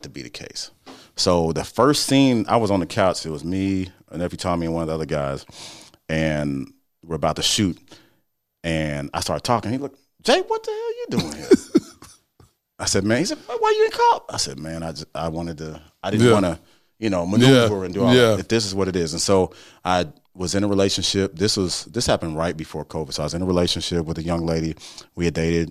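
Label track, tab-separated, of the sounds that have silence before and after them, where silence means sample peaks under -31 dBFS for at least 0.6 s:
8.640000	12.050000	sound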